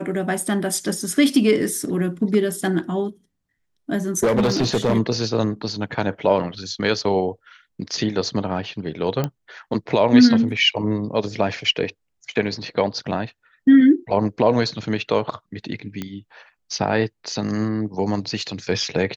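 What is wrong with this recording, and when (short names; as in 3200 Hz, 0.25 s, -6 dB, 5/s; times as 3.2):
4.23–4.97 clipped -14 dBFS
9.24 pop -10 dBFS
16.02 pop -14 dBFS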